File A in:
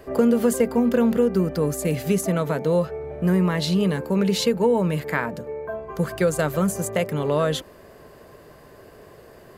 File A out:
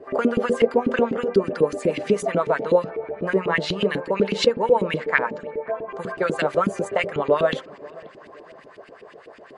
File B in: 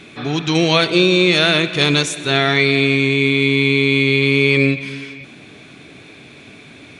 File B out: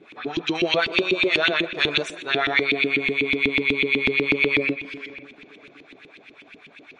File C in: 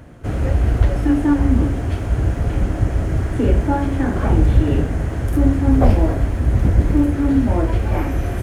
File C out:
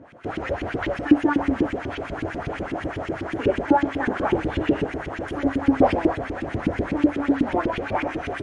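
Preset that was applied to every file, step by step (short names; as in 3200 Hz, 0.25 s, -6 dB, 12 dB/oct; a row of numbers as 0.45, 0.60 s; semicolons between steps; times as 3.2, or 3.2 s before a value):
high shelf 2100 Hz +5 dB; notches 60/120/180/240/300/360/420/480/540/600 Hz; LFO band-pass saw up 8.1 Hz 270–3100 Hz; tape echo 0.53 s, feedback 46%, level -20 dB, low-pass 1100 Hz; MP3 48 kbps 44100 Hz; normalise peaks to -3 dBFS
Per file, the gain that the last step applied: +9.5, 0.0, +7.5 dB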